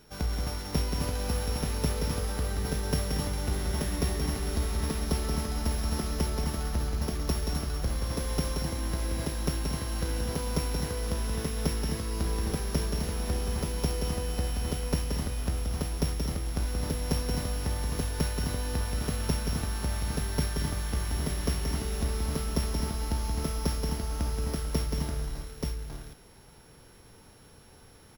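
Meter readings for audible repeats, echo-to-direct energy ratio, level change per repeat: 3, 0.0 dB, no regular repeats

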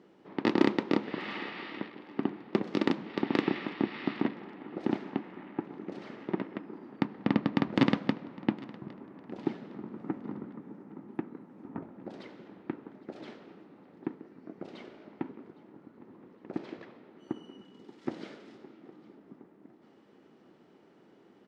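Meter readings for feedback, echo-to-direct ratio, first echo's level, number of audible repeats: 39%, -21.0 dB, -21.5 dB, 2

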